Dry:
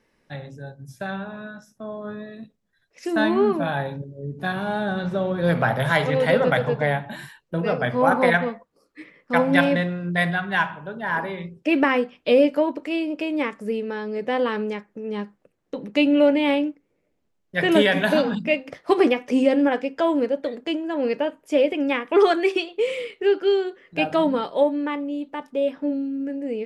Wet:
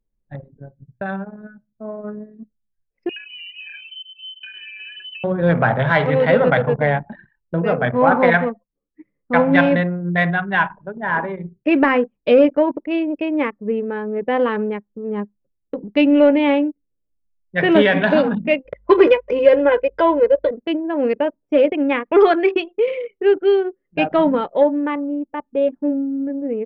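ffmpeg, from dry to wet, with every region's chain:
ffmpeg -i in.wav -filter_complex "[0:a]asettb=1/sr,asplit=3[link_01][link_02][link_03];[link_01]atrim=end=3.094[link_04];[link_02]atrim=start=3.09:end=5.24,asetpts=PTS-STARTPTS,afade=type=in:duration=0.004:curve=qsin,afade=type=out:start_time=2.146:duration=0.004:curve=qsin,aecho=1:1:1.4:0.65,atrim=end_sample=94815,acompressor=threshold=-29dB:ratio=16:attack=3.2:release=140:knee=1:detection=peak,lowpass=frequency=2700:width_type=q:width=0.5098,lowpass=frequency=2700:width_type=q:width=0.6013,lowpass=frequency=2700:width_type=q:width=0.9,lowpass=frequency=2700:width_type=q:width=2.563,afreqshift=-3200[link_05];[link_03]atrim=start=5.236[link_06];[link_04][link_05]acrossfade=duration=0.004:curve1=hsin:curve2=qsin[link_07];[link_07][link_06]acrossfade=duration=0.004:curve1=qsin:curve2=hsin,asettb=1/sr,asplit=3[link_08][link_09][link_10];[link_08]atrim=end=18.654[link_11];[link_09]atrim=start=18.65:end=20.51,asetpts=PTS-STARTPTS,afade=type=in:duration=0.004:curve=qsin,afade=type=out:start_time=1.856:duration=0.004:curve=qsin,aecho=1:1:2:0.9,atrim=end_sample=82026,aeval=exprs='val(0)+0.00282*(sin(2*PI*50*n/s)+sin(2*PI*2*50*n/s)/2+sin(2*PI*3*50*n/s)/3+sin(2*PI*4*50*n/s)/4+sin(2*PI*5*50*n/s)/5)':channel_layout=same[link_12];[link_10]atrim=start=20.506[link_13];[link_11][link_12]acrossfade=duration=0.004:curve1=hsin:curve2=qsin[link_14];[link_14][link_13]acrossfade=duration=0.004:curve1=qsin:curve2=hsin,acontrast=24,anlmdn=631,lowpass=2700" out.wav

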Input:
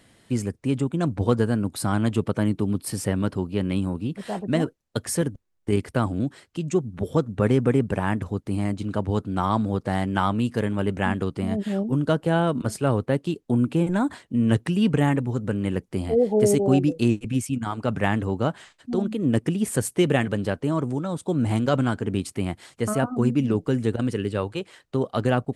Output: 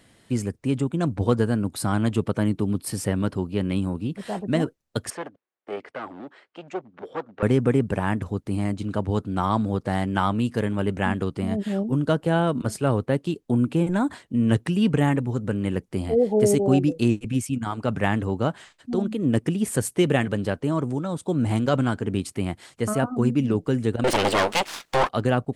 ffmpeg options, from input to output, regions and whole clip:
ffmpeg -i in.wav -filter_complex "[0:a]asettb=1/sr,asplit=3[link_01][link_02][link_03];[link_01]atrim=end=5.104[link_04];[link_02]atrim=start=5.1:end=7.43,asetpts=PTS-STARTPTS,afade=type=in:duration=0.004:curve=qsin,afade=type=out:start_time=2.326:duration=0.004:curve=qsin,aeval=exprs='clip(val(0),-1,0.0473)':channel_layout=same,highpass=480,lowpass=2600[link_05];[link_03]atrim=start=7.426[link_06];[link_04][link_05]acrossfade=duration=0.004:curve1=hsin:curve2=qsin[link_07];[link_07][link_06]acrossfade=duration=0.004:curve1=qsin:curve2=hsin,asettb=1/sr,asplit=3[link_08][link_09][link_10];[link_08]atrim=end=24.044[link_11];[link_09]atrim=start=24.04:end=25.09,asetpts=PTS-STARTPTS,afade=type=in:duration=0.004:curve=qsin,afade=type=out:start_time=1.046:duration=0.004:curve=qsin,aeval=exprs='abs(val(0))':channel_layout=same,asplit=2[link_12][link_13];[link_13]highpass=frequency=720:poles=1,volume=26dB,asoftclip=type=tanh:threshold=-11dB[link_14];[link_12][link_14]amix=inputs=2:normalize=0,lowpass=frequency=7800:poles=1,volume=-6dB[link_15];[link_10]atrim=start=25.086[link_16];[link_11][link_15]acrossfade=duration=0.004:curve1=hsin:curve2=qsin[link_17];[link_17][link_16]acrossfade=duration=0.004:curve1=qsin:curve2=hsin" out.wav

